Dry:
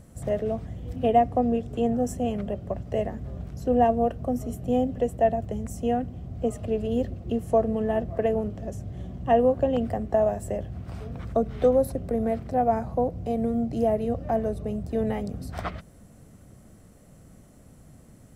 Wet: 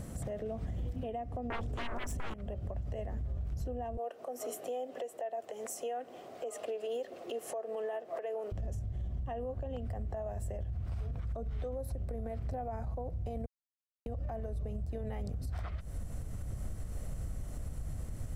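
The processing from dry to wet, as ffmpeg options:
ffmpeg -i in.wav -filter_complex "[0:a]asettb=1/sr,asplit=3[link_01][link_02][link_03];[link_01]atrim=end=1.504[link_04];[link_02]atrim=start=1.5:end=2.34,asetpts=PTS-STARTPTS,afade=type=in:duration=0.004:curve=qsin,afade=type=out:start_time=0.836:duration=0.004:curve=qsin,aeval=exprs='0.224*sin(PI/2*6.31*val(0)/0.224)':channel_layout=same[link_05];[link_03]atrim=start=2.336[link_06];[link_04][link_05]acrossfade=duration=0.004:curve1=hsin:curve2=qsin[link_07];[link_07][link_06]acrossfade=duration=0.004:curve1=qsin:curve2=hsin,asettb=1/sr,asplit=3[link_08][link_09][link_10];[link_08]atrim=end=3.974[link_11];[link_09]atrim=start=3.97:end=8.52,asetpts=PTS-STARTPTS,afade=type=in:duration=0.004:curve=qsin,afade=type=out:start_time=4.546:duration=0.004:curve=qsin,highpass=frequency=390:width=0.5412,highpass=frequency=390:width=1.3066[link_12];[link_10]atrim=start=8.516[link_13];[link_11][link_12]acrossfade=duration=0.004:curve1=hsin:curve2=qsin[link_14];[link_14][link_13]acrossfade=duration=0.004:curve1=qsin:curve2=hsin,asplit=3[link_15][link_16][link_17];[link_15]atrim=end=13.46,asetpts=PTS-STARTPTS,afade=type=out:start_time=13.456:duration=0.004:curve=hsin[link_18];[link_16]atrim=start=13.46:end=14.06,asetpts=PTS-STARTPTS,volume=0[link_19];[link_17]atrim=start=14.06,asetpts=PTS-STARTPTS,afade=type=in:duration=0.004:curve=hsin[link_20];[link_18][link_19][link_20]concat=n=3:v=0:a=1,asubboost=boost=7.5:cutoff=74,acompressor=threshold=-35dB:ratio=6,alimiter=level_in=13.5dB:limit=-24dB:level=0:latency=1:release=128,volume=-13.5dB,volume=7dB" out.wav

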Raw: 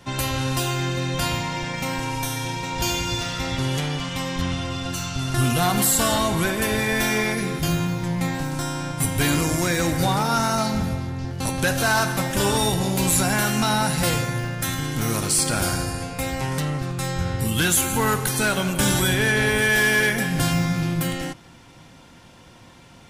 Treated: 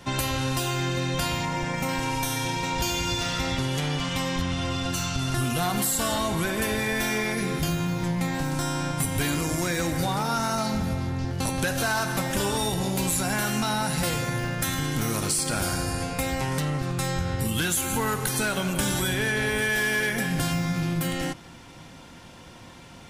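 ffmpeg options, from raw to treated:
ffmpeg -i in.wav -filter_complex "[0:a]asettb=1/sr,asplit=3[link_01][link_02][link_03];[link_01]atrim=end=1.454[link_04];[link_02]atrim=start=1.45:end=1.89,asetpts=PTS-STARTPTS,afade=type=in:duration=0.004:curve=qsin,afade=type=out:start_time=0.436:duration=0.004:curve=qsin,equalizer=frequency=3800:width=0.97:gain=-7[link_05];[link_03]atrim=start=1.886[link_06];[link_04][link_05]acrossfade=duration=0.004:curve1=hsin:curve2=qsin[link_07];[link_07][link_06]acrossfade=duration=0.004:curve1=qsin:curve2=hsin,equalizer=frequency=120:width=7.8:gain=-4,acompressor=threshold=-25dB:ratio=6,volume=2dB" out.wav

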